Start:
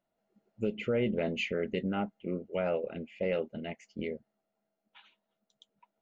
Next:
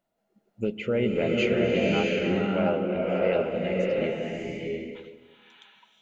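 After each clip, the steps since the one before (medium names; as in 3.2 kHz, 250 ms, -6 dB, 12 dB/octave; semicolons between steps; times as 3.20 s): swelling reverb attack 670 ms, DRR -3.5 dB; trim +3.5 dB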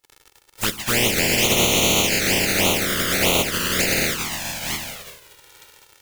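spectral contrast reduction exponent 0.18; crackle 120 per s -36 dBFS; touch-sensitive flanger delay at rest 2.3 ms, full sweep at -20 dBFS; trim +8.5 dB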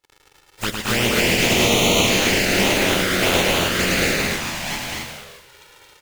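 treble shelf 6.6 kHz -10 dB; on a send: loudspeakers at several distances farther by 37 m -5 dB, 76 m -3 dB, 92 m -4 dB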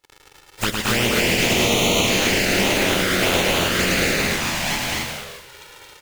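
compression 2:1, threshold -25 dBFS, peak gain reduction 7 dB; trim +5 dB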